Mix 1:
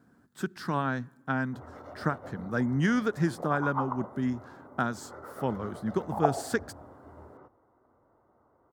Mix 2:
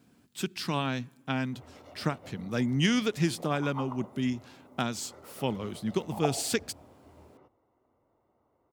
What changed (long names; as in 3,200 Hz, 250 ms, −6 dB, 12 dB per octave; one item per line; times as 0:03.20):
background −5.0 dB
master: add high shelf with overshoot 2,000 Hz +8 dB, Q 3